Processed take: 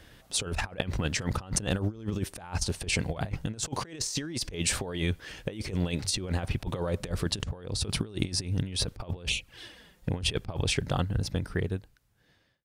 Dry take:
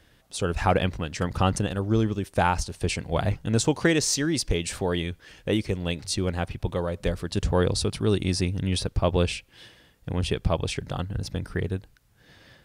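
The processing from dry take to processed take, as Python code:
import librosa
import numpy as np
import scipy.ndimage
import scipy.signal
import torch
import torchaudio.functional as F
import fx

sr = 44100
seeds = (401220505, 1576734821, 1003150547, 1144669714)

y = fx.fade_out_tail(x, sr, length_s=2.34)
y = fx.over_compress(y, sr, threshold_db=-30.0, ratio=-0.5)
y = fx.env_flanger(y, sr, rest_ms=6.8, full_db=-25.0, at=(9.26, 10.12))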